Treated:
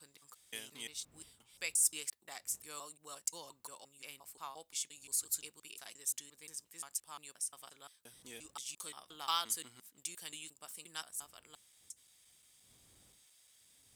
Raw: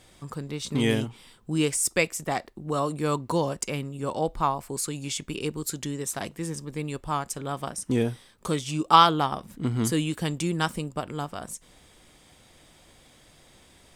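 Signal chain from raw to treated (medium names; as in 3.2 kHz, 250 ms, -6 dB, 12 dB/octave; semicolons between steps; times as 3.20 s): slices played last to first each 175 ms, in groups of 3; wind noise 80 Hz -34 dBFS; differentiator; trim -5 dB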